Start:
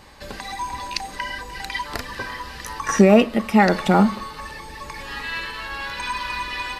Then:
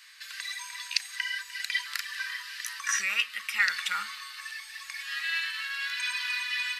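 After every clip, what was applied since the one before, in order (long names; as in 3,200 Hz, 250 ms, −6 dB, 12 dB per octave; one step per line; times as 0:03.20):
inverse Chebyshev high-pass filter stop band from 770 Hz, stop band 40 dB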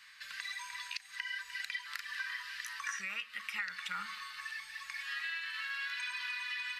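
parametric band 170 Hz +13 dB 0.45 octaves
downward compressor 12 to 1, threshold −32 dBFS, peak gain reduction 13 dB
high-shelf EQ 3,500 Hz −10.5 dB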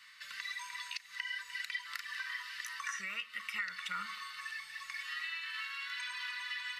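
notch comb filter 810 Hz
level +1 dB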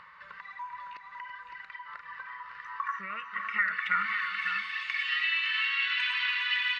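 low-pass filter sweep 820 Hz → 2,900 Hz, 0:02.46–0:04.60
multi-tap delay 331/558 ms −13/−7.5 dB
in parallel at −2 dB: upward compression, threshold −40 dBFS
on the sum: level +1 dB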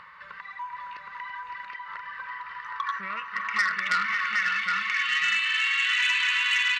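single-tap delay 767 ms −3.5 dB
saturating transformer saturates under 2,900 Hz
level +4 dB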